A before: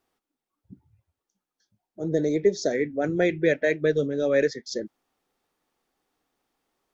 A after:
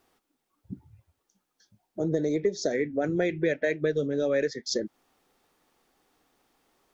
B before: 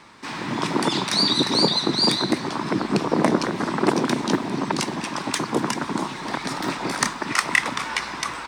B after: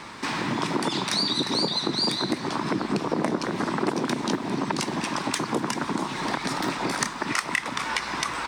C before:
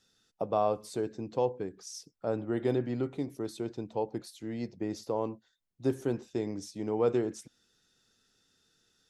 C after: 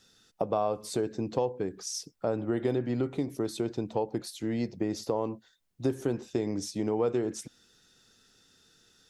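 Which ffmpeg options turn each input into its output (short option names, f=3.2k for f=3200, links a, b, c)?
-af "acompressor=threshold=-35dB:ratio=3,volume=8dB"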